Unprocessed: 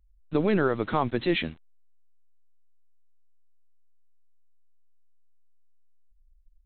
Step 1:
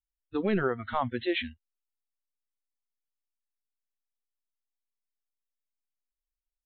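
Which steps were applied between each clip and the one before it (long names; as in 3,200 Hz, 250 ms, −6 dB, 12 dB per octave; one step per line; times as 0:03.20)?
noise reduction from a noise print of the clip's start 30 dB
level −2.5 dB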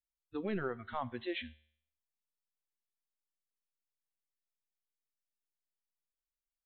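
tuned comb filter 76 Hz, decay 0.63 s, harmonics all, mix 40%
level −5.5 dB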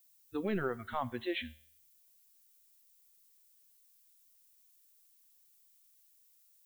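background noise violet −69 dBFS
level +2.5 dB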